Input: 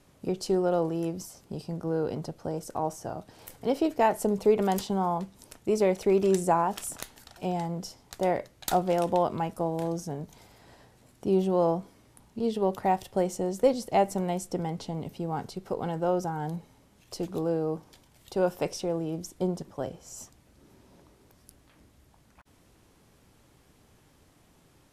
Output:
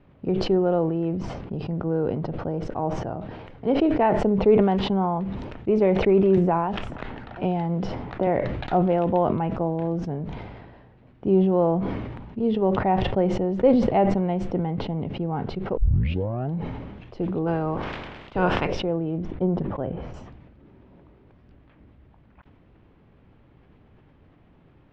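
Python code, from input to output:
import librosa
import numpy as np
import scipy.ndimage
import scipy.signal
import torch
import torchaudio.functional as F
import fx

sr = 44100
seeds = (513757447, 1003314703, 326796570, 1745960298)

y = fx.band_squash(x, sr, depth_pct=70, at=(6.37, 8.27))
y = fx.spec_clip(y, sr, under_db=20, at=(17.46, 18.66), fade=0.02)
y = fx.air_absorb(y, sr, metres=210.0, at=(19.18, 20.14))
y = fx.edit(y, sr, fx.tape_start(start_s=15.77, length_s=0.76), tone=tone)
y = scipy.signal.sosfilt(scipy.signal.butter(4, 2900.0, 'lowpass', fs=sr, output='sos'), y)
y = fx.low_shelf(y, sr, hz=450.0, db=7.0)
y = fx.sustainer(y, sr, db_per_s=35.0)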